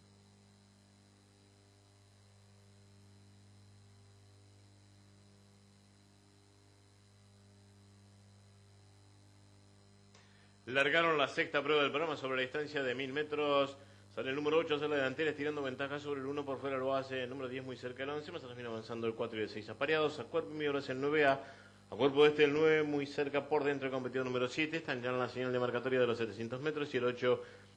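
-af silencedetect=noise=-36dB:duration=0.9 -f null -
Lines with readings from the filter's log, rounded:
silence_start: 0.00
silence_end: 10.68 | silence_duration: 10.68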